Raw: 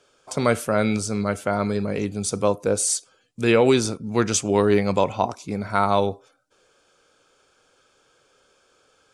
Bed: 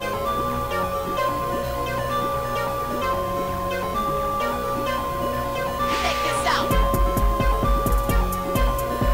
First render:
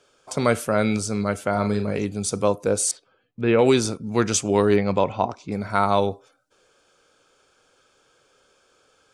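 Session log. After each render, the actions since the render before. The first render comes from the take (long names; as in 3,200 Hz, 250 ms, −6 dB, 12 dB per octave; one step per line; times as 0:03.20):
0:01.51–0:01.99: double-tracking delay 38 ms −8 dB
0:02.91–0:03.59: high-frequency loss of the air 400 metres
0:04.76–0:05.52: high-frequency loss of the air 130 metres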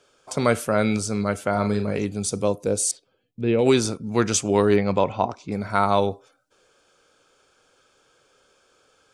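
0:02.26–0:03.65: parametric band 1,300 Hz −6 dB → −13.5 dB 1.6 octaves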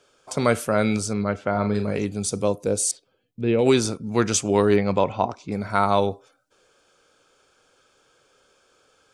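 0:01.13–0:01.75: high-frequency loss of the air 170 metres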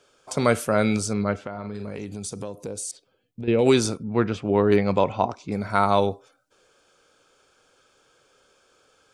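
0:01.37–0:03.48: downward compressor, threshold −29 dBFS
0:04.03–0:04.72: high-frequency loss of the air 420 metres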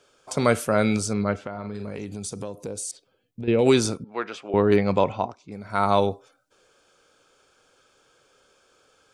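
0:04.04–0:04.54: Bessel high-pass filter 730 Hz
0:05.09–0:05.89: duck −10 dB, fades 0.25 s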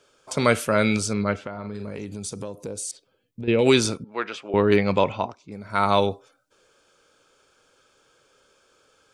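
notch filter 740 Hz, Q 13
dynamic equaliser 2,800 Hz, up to +6 dB, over −41 dBFS, Q 0.84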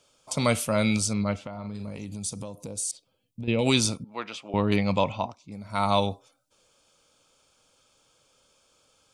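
graphic EQ with 15 bands 400 Hz −11 dB, 1,600 Hz −12 dB, 10,000 Hz +3 dB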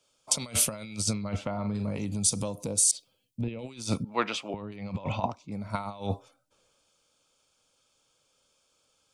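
compressor whose output falls as the input rises −30 dBFS, ratio −0.5
multiband upward and downward expander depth 40%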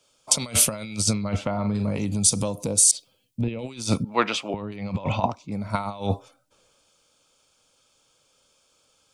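level +6 dB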